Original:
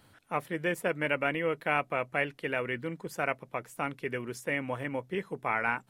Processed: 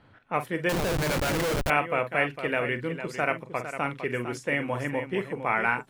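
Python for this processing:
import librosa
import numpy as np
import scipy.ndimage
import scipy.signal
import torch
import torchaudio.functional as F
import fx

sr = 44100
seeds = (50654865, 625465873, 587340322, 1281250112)

y = fx.echo_multitap(x, sr, ms=(41, 49, 455), db=(-12.0, -16.0, -10.0))
y = fx.env_lowpass(y, sr, base_hz=2400.0, full_db=-29.0)
y = fx.schmitt(y, sr, flips_db=-34.0, at=(0.69, 1.7))
y = y * librosa.db_to_amplitude(4.0)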